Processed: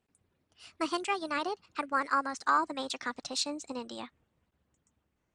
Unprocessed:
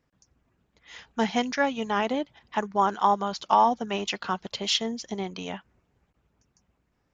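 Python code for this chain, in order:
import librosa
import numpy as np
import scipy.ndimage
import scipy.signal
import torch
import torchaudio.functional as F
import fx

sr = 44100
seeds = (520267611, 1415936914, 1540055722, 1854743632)

y = fx.speed_glide(x, sr, from_pct=149, to_pct=118)
y = y * librosa.db_to_amplitude(-6.5)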